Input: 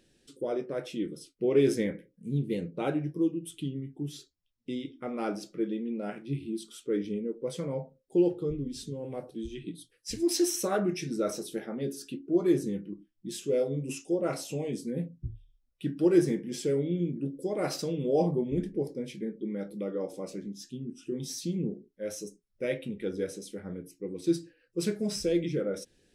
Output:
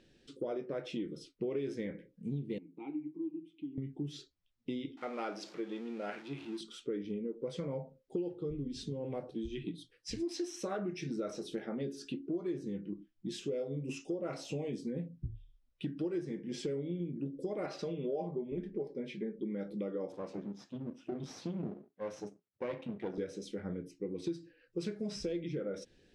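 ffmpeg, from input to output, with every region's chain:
ffmpeg -i in.wav -filter_complex "[0:a]asettb=1/sr,asplit=3[link_01][link_02][link_03];[link_01]atrim=end=2.584[link_04];[link_02]atrim=start=2.58:end=3.78,asetpts=PTS-STARTPTS,afade=type=in:duration=0.004:curve=qsin,afade=type=out:start_time=1.196:duration=0.004:curve=qsin,acompressor=threshold=-38dB:ratio=1.5:attack=3.2:release=140:knee=1:detection=peak,asplit=3[link_05][link_06][link_07];[link_05]bandpass=frequency=300:width_type=q:width=8,volume=0dB[link_08];[link_06]bandpass=frequency=870:width_type=q:width=8,volume=-6dB[link_09];[link_07]bandpass=frequency=2240:width_type=q:width=8,volume=-9dB[link_10];[link_08][link_09][link_10]amix=inputs=3:normalize=0[link_11];[link_03]atrim=start=3.776[link_12];[link_04][link_11]acrossfade=duration=0.004:curve1=hsin:curve2=qsin[link_13];[link_13][link_12]acrossfade=duration=0.004:curve1=qsin:curve2=hsin,asettb=1/sr,asplit=3[link_14][link_15][link_16];[link_14]atrim=end=4.974[link_17];[link_15]atrim=start=4.97:end=6.61,asetpts=PTS-STARTPTS,afade=type=in:duration=0.004:curve=qsin,afade=type=out:start_time=1.636:duration=0.004:curve=qsin,aeval=exprs='val(0)+0.5*0.00447*sgn(val(0))':channel_layout=same,highpass=frequency=240:poles=1,lowshelf=frequency=350:gain=-11[link_18];[link_16]atrim=start=6.606[link_19];[link_17][link_18]acrossfade=duration=0.004:curve1=hsin:curve2=qsin[link_20];[link_20][link_19]acrossfade=duration=0.004:curve1=qsin:curve2=hsin,asettb=1/sr,asplit=3[link_21][link_22][link_23];[link_21]atrim=end=17.664[link_24];[link_22]atrim=start=17.66:end=19.39,asetpts=PTS-STARTPTS,afade=type=in:duration=0.004:curve=qsin,afade=type=out:start_time=1.726:duration=0.004:curve=qsin,bass=frequency=250:gain=-7,treble=frequency=4000:gain=-9,aecho=1:1:5:0.43,atrim=end_sample=76293[link_25];[link_23]atrim=start=19.386[link_26];[link_24][link_25]acrossfade=duration=0.004:curve1=hsin:curve2=qsin[link_27];[link_27][link_26]acrossfade=duration=0.004:curve1=qsin:curve2=hsin,asettb=1/sr,asplit=3[link_28][link_29][link_30];[link_28]atrim=end=20.124[link_31];[link_29]atrim=start=20.12:end=23.18,asetpts=PTS-STARTPTS,afade=type=in:duration=0.004:curve=qsin,afade=type=out:start_time=3.056:duration=0.004:curve=qsin,aeval=exprs='if(lt(val(0),0),0.251*val(0),val(0))':channel_layout=same,highpass=frequency=110:width=0.5412,highpass=frequency=110:width=1.3066,highshelf=frequency=3000:gain=-8[link_32];[link_30]atrim=start=23.176[link_33];[link_31][link_32]acrossfade=duration=0.004:curve1=hsin:curve2=qsin[link_34];[link_34][link_33]acrossfade=duration=0.004:curve1=qsin:curve2=hsin,acompressor=threshold=-36dB:ratio=6,lowpass=4700,volume=1.5dB" out.wav

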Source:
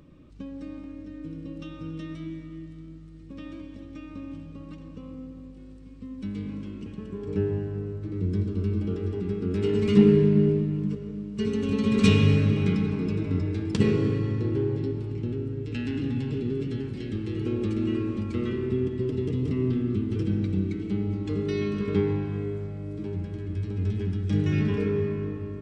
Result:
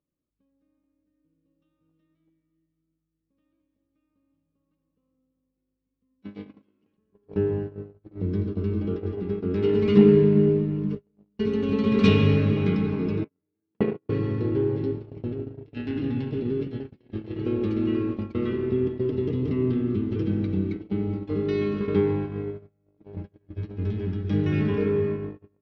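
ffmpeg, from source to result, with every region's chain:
ffmpeg -i in.wav -filter_complex "[0:a]asettb=1/sr,asplit=3[link_01][link_02][link_03];[link_01]atrim=end=6.224[link_04];[link_02]atrim=start=6.22:end=6.97,asetpts=PTS-STARTPTS,afade=type=in:duration=0.004:curve=qsin,afade=type=out:start_time=0.746:duration=0.004:curve=qsin,highpass=frequency=340:poles=1,acontrast=79[link_05];[link_03]atrim=start=6.966[link_06];[link_04][link_05]acrossfade=duration=0.004:curve1=hsin:curve2=qsin[link_07];[link_07][link_06]acrossfade=duration=0.004:curve1=qsin:curve2=hsin,asettb=1/sr,asplit=3[link_08][link_09][link_10];[link_08]atrim=end=13.244[link_11];[link_09]atrim=start=13.24:end=14.09,asetpts=PTS-STARTPTS,afade=type=in:duration=0.004:curve=qsin,afade=type=out:start_time=0.846:duration=0.004:curve=qsin,agate=range=-16dB:threshold=-21dB:ratio=16:release=100:detection=peak,highpass=160,lowpass=2300[link_12];[link_10]atrim=start=14.086[link_13];[link_11][link_12]acrossfade=duration=0.004:curve1=hsin:curve2=qsin[link_14];[link_14][link_13]acrossfade=duration=0.004:curve1=qsin:curve2=hsin,agate=range=-36dB:threshold=-29dB:ratio=16:detection=peak,lowpass=frequency=5000:width=0.5412,lowpass=frequency=5000:width=1.3066,equalizer=frequency=640:width=0.41:gain=6.5,volume=-2dB" out.wav

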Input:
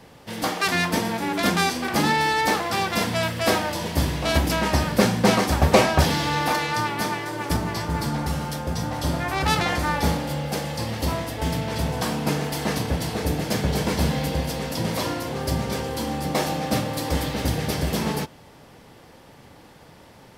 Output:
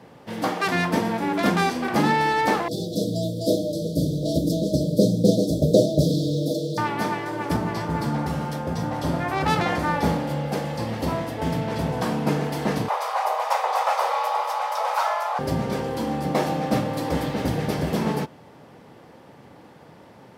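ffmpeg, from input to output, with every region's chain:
ffmpeg -i in.wav -filter_complex "[0:a]asettb=1/sr,asplit=3[link_01][link_02][link_03];[link_01]atrim=end=2.684[link_04];[link_02]atrim=start=2.68:end=6.78,asetpts=PTS-STARTPTS,afade=type=in:duration=0.004:curve=qsin,afade=type=out:start_time=4.096:duration=0.004:curve=qsin,aecho=1:1:6.5:0.52,atrim=end_sample=180810,acrusher=bits=8:mode=log:mix=0:aa=0.000001,asuperstop=centerf=1500:order=20:qfactor=0.52[link_05];[link_03]atrim=start=6.776[link_06];[link_04][link_05]acrossfade=duration=0.004:curve1=hsin:curve2=qsin[link_07];[link_07][link_06]acrossfade=duration=0.004:curve1=qsin:curve2=hsin,asettb=1/sr,asplit=3[link_08][link_09][link_10];[link_08]atrim=end=12.884[link_11];[link_09]atrim=start=12.88:end=15.39,asetpts=PTS-STARTPTS,afade=type=in:duration=0.004:curve=qsin,afade=type=out:start_time=2.506:duration=0.004:curve=qsin,highpass=340,equalizer=frequency=630:width=0.68:gain=7,afreqshift=330[link_12];[link_10]atrim=start=15.386[link_13];[link_11][link_12]acrossfade=duration=0.004:curve1=hsin:curve2=qsin[link_14];[link_14][link_13]acrossfade=duration=0.004:curve1=qsin:curve2=hsin,highpass=120,highshelf=frequency=2300:gain=-11,volume=2.5dB" out.wav

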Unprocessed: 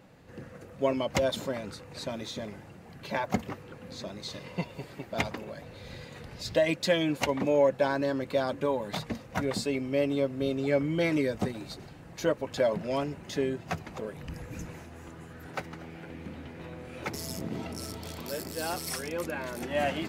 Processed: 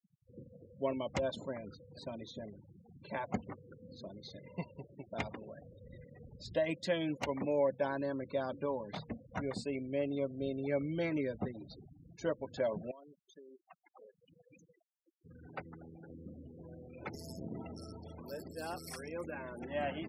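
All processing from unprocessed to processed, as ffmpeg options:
ffmpeg -i in.wav -filter_complex "[0:a]asettb=1/sr,asplit=3[link_01][link_02][link_03];[link_01]atrim=end=12.914[link_04];[link_02]atrim=start=12.91:end=15.25,asetpts=PTS-STARTPTS,afade=type=in:duration=0.004:curve=qsin,afade=type=out:start_time=2.336:duration=0.004:curve=qsin,highpass=frequency=800:poles=1,equalizer=frequency=1800:width=6.6:gain=-3,acompressor=threshold=-43dB:ratio=6:attack=3.2:release=140:knee=1:detection=peak[link_05];[link_03]atrim=start=15.246[link_06];[link_04][link_05]acrossfade=duration=0.004:curve1=hsin:curve2=qsin[link_07];[link_07][link_06]acrossfade=duration=0.004:curve1=qsin:curve2=hsin,highshelf=frequency=7400:gain=3,afftfilt=real='re*gte(hypot(re,im),0.0141)':imag='im*gte(hypot(re,im),0.0141)':win_size=1024:overlap=0.75,highshelf=frequency=3300:gain=-7,volume=-7.5dB" out.wav

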